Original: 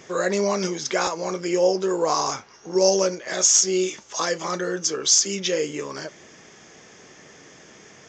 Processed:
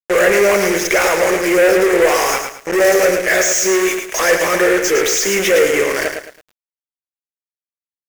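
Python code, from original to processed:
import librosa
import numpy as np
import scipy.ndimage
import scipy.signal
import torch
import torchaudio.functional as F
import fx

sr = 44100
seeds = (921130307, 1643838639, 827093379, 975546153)

y = fx.fuzz(x, sr, gain_db=38.0, gate_db=-34.0)
y = fx.graphic_eq(y, sr, hz=(125, 250, 500, 1000, 2000, 4000), db=(-11, -5, 7, -7, 11, -10))
y = fx.echo_crushed(y, sr, ms=109, feedback_pct=35, bits=7, wet_db=-6.0)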